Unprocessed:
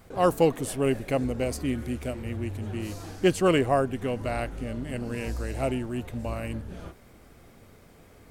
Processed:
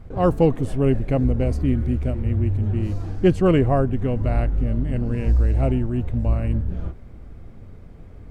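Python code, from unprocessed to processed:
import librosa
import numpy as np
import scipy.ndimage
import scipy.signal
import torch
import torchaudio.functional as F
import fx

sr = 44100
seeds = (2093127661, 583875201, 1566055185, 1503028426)

y = fx.riaa(x, sr, side='playback')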